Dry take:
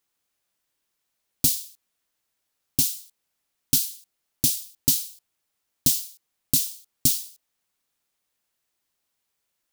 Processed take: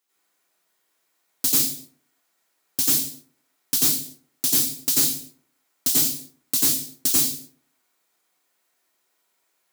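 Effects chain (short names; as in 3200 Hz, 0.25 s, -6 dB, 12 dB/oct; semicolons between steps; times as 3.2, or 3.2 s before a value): HPF 270 Hz 12 dB/oct; plate-style reverb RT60 0.59 s, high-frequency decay 0.4×, pre-delay 80 ms, DRR -9.5 dB; soft clip -13 dBFS, distortion -11 dB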